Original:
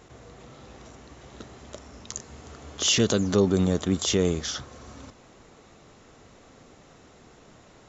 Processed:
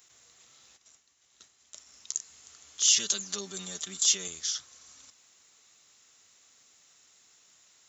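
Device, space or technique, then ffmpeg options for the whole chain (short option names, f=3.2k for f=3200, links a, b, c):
smiley-face EQ: -filter_complex "[0:a]aderivative,lowshelf=f=82:g=7.5,equalizer=f=580:t=o:w=1.7:g=-4,highshelf=f=5.1k:g=4,asplit=3[a][b][c];[a]afade=t=out:st=0.76:d=0.02[d];[b]agate=range=-33dB:threshold=-51dB:ratio=3:detection=peak,afade=t=in:st=0.76:d=0.02,afade=t=out:st=1.86:d=0.02[e];[c]afade=t=in:st=1.86:d=0.02[f];[d][e][f]amix=inputs=3:normalize=0,asettb=1/sr,asplit=3[g][h][i];[g]atrim=end=2.964[j];[h]atrim=start=2.96:end=4.28,asetpts=PTS-STARTPTS,afade=t=in:d=0.004:c=qsin,afade=t=out:st=1.316:d=0.004:c=qsin,aecho=1:1:5.1:0.86,atrim=end_sample=58212[k];[i]atrim=start=4.276[l];[j][k]acrossfade=d=0.004:c1=hsin:c2=qsin[m];[m][l]acrossfade=d=0.004:c1=qsin:c2=hsin,equalizer=f=80:t=o:w=1.8:g=5,volume=2dB"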